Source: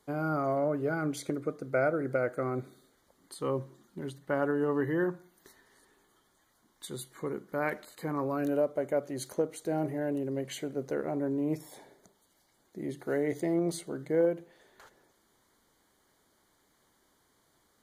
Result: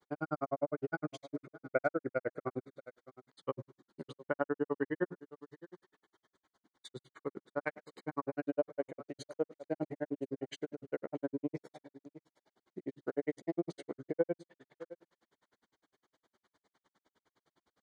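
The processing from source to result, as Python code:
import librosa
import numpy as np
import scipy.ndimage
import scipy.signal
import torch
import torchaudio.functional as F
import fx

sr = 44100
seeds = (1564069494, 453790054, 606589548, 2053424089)

y = fx.highpass(x, sr, hz=190.0, slope=6)
y = fx.air_absorb(y, sr, metres=110.0)
y = y + 10.0 ** (-17.0 / 20.0) * np.pad(y, (int(650 * sr / 1000.0), 0))[:len(y)]
y = fx.granulator(y, sr, seeds[0], grain_ms=55.0, per_s=9.8, spray_ms=13.0, spread_st=0)
y = y * 10.0 ** (1.0 / 20.0)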